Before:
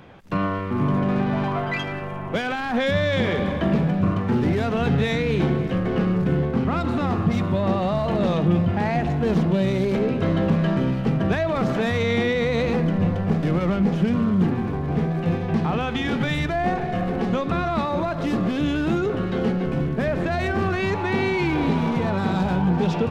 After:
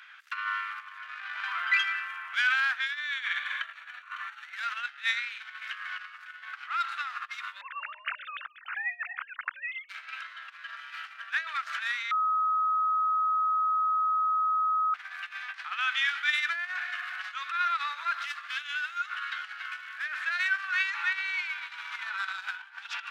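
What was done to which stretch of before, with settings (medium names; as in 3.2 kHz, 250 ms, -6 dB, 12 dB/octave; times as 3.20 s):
2.99–4.56 s: Butterworth band-stop 5 kHz, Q 6.7
7.61–9.89 s: formants replaced by sine waves
12.11–14.94 s: bleep 1.27 kHz -19 dBFS
whole clip: compressor with a negative ratio -24 dBFS, ratio -0.5; elliptic high-pass 1.4 kHz, stop band 70 dB; treble shelf 2.7 kHz -11 dB; trim +6.5 dB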